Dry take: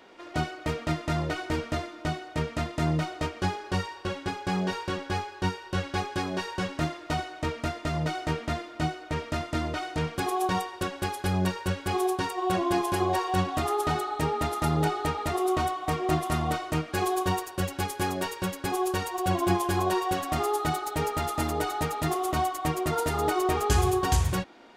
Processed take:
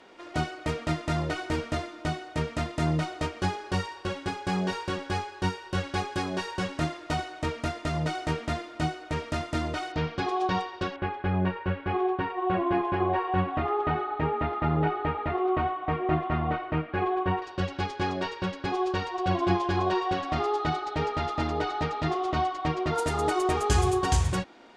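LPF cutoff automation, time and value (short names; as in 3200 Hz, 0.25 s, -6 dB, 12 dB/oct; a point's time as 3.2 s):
LPF 24 dB/oct
11000 Hz
from 9.92 s 5100 Hz
from 10.96 s 2600 Hz
from 17.42 s 4900 Hz
from 22.95 s 9600 Hz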